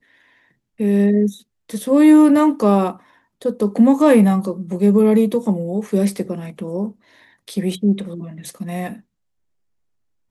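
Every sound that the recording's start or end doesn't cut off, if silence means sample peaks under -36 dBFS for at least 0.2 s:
0.8–1.38
1.69–2.97
3.42–6.92
7.48–9

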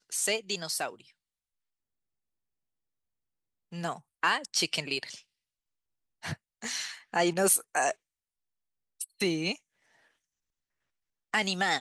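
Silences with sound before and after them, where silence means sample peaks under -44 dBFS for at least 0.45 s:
1.01–3.72
5.19–6.23
7.93–9
9.56–11.33

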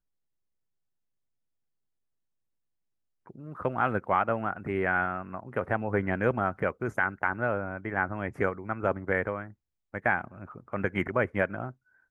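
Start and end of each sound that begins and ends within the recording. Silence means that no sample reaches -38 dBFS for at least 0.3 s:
3.3–9.5
9.94–11.71

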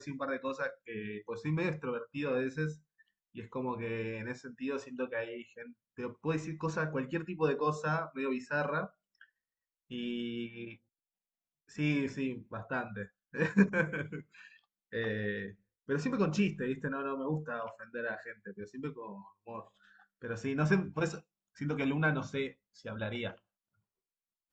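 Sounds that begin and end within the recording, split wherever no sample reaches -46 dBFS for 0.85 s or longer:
11.71–23.34

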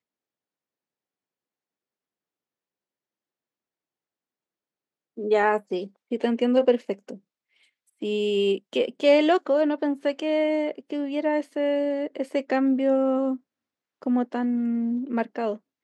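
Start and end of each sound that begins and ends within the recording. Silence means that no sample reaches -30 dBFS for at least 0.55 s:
5.18–7.14
8.02–13.36

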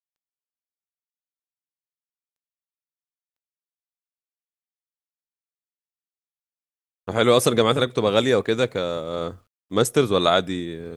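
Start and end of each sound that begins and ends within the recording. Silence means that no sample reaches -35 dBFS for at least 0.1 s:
7.08–9.34

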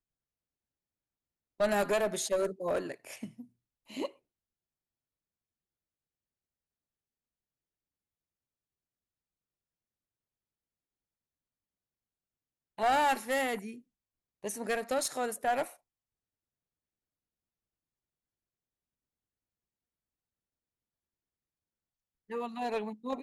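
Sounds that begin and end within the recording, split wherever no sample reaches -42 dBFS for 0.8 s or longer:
1.6–4.07
12.78–15.72

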